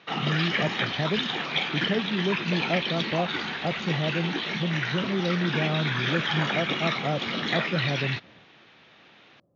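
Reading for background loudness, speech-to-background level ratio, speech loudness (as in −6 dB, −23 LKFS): −28.0 LKFS, −2.0 dB, −30.0 LKFS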